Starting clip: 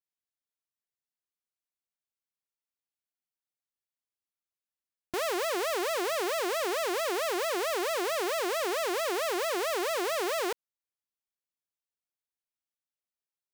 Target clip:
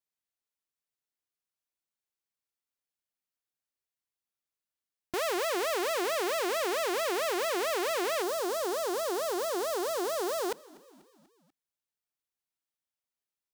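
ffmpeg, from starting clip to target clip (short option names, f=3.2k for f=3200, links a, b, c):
-filter_complex "[0:a]asettb=1/sr,asplit=3[a][b][c];[a]atrim=end=8.224[d];[b]atrim=start=8.22:end=10.52,asetpts=PTS-STARTPTS,afade=t=in:d=0.004:c=qsin,afade=t=out:st=2.296:d=0.004:c=qsin,equalizer=f=2.3k:w=1.4:g=-12[e];[c]atrim=start=10.516[f];[d][e]acrossfade=d=0.004:c1=hsin:c2=qsin[g];[g][f]acrossfade=d=0.004:c1=qsin:c2=hsin,asplit=5[h][i][j][k][l];[i]adelay=244,afreqshift=-47,volume=-23dB[m];[j]adelay=488,afreqshift=-94,volume=-27.7dB[n];[k]adelay=732,afreqshift=-141,volume=-32.5dB[o];[l]adelay=976,afreqshift=-188,volume=-37.2dB[p];[h][m][n][o][p]amix=inputs=5:normalize=0"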